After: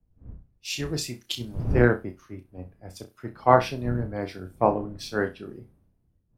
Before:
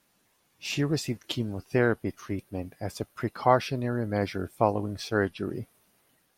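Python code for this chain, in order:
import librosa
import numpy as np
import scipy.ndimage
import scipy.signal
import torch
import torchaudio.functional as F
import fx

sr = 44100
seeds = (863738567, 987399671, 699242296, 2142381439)

y = fx.dmg_wind(x, sr, seeds[0], corner_hz=200.0, level_db=-38.0)
y = fx.room_flutter(y, sr, wall_m=5.6, rt60_s=0.26)
y = fx.band_widen(y, sr, depth_pct=100)
y = y * 10.0 ** (-3.5 / 20.0)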